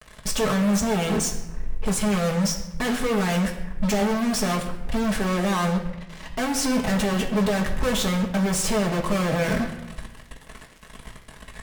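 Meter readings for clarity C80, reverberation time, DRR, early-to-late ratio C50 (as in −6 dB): 11.0 dB, 1.0 s, −3.0 dB, 9.0 dB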